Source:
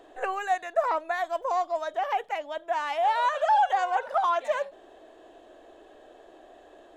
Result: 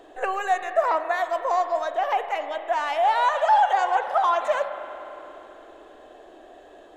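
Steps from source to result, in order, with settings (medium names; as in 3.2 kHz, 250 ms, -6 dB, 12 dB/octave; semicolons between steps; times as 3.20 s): spring tank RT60 3.5 s, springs 33/52 ms, chirp 50 ms, DRR 8.5 dB; trim +3.5 dB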